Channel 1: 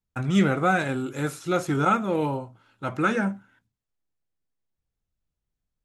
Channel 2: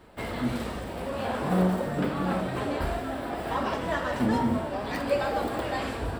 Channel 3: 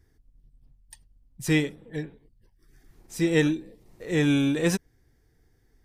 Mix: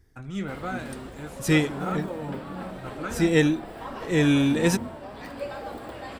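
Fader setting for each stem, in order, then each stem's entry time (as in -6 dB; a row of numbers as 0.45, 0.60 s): -11.5, -8.0, +2.0 dB; 0.00, 0.30, 0.00 s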